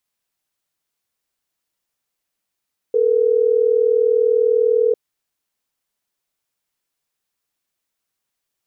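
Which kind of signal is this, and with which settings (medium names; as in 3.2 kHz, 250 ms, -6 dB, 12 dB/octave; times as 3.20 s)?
call progress tone ringback tone, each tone -15.5 dBFS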